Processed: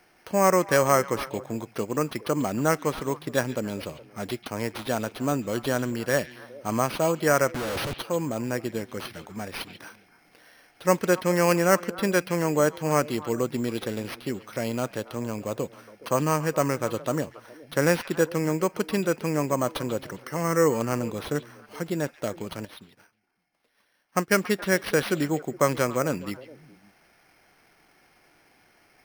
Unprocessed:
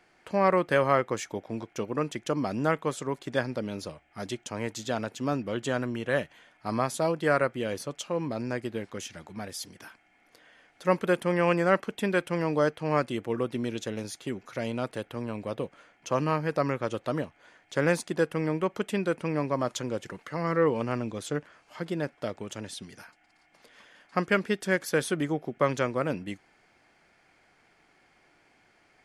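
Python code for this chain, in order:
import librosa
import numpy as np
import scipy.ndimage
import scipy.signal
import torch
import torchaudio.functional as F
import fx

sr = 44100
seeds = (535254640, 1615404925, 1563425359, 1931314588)

y = fx.schmitt(x, sr, flips_db=-48.0, at=(7.54, 7.94))
y = np.repeat(y[::6], 6)[:len(y)]
y = fx.echo_stepped(y, sr, ms=139, hz=2900.0, octaves=-1.4, feedback_pct=70, wet_db=-11.0)
y = fx.upward_expand(y, sr, threshold_db=-58.0, expansion=1.5, at=(22.65, 24.32))
y = y * 10.0 ** (3.0 / 20.0)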